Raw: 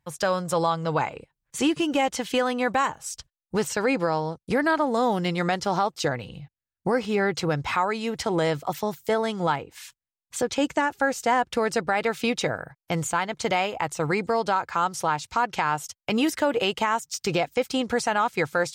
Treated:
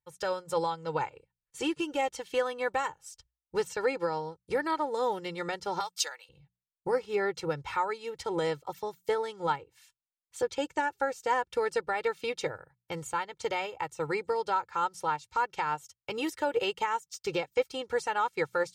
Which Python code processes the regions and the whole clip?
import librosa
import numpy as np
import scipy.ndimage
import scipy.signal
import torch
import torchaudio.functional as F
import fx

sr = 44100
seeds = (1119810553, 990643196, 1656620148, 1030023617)

y = fx.chain(x, sr, fx.highpass(hz=770.0, slope=12),
    fx.tilt_eq(slope=3.5),
    fx.quant_float(bits=6), at=(5.8, 6.29))
y = fx.hum_notches(y, sr, base_hz=60, count=3)
y = y + 0.73 * np.pad(y, (int(2.2 * sr / 1000.0), 0))[:len(y)]
y = fx.upward_expand(y, sr, threshold_db=-41.0, expansion=1.5)
y = y * 10.0 ** (-6.0 / 20.0)